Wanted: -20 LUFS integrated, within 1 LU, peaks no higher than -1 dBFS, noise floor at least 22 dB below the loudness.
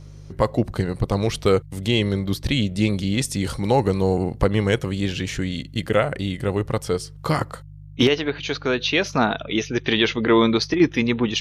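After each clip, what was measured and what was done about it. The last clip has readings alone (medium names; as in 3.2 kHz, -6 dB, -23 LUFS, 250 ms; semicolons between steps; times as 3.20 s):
hum 50 Hz; highest harmonic 150 Hz; hum level -40 dBFS; loudness -22.0 LUFS; peak level -5.5 dBFS; loudness target -20.0 LUFS
-> de-hum 50 Hz, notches 3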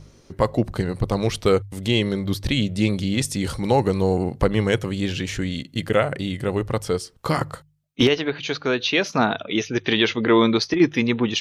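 hum not found; loudness -22.0 LUFS; peak level -5.5 dBFS; loudness target -20.0 LUFS
-> trim +2 dB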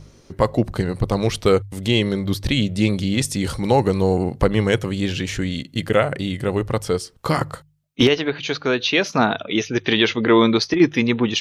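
loudness -20.0 LUFS; peak level -3.5 dBFS; noise floor -52 dBFS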